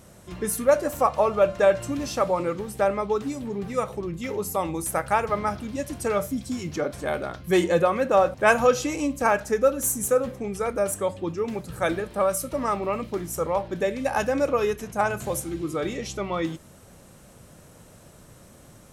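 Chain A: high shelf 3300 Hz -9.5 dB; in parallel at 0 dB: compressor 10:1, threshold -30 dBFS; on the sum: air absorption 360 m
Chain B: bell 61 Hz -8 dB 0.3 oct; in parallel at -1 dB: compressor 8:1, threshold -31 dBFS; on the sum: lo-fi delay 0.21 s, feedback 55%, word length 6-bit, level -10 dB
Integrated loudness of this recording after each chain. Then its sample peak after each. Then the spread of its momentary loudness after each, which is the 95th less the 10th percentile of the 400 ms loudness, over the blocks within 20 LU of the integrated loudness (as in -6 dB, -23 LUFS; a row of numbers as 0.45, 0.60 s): -24.5, -23.0 LUFS; -7.0, -4.0 dBFS; 7, 8 LU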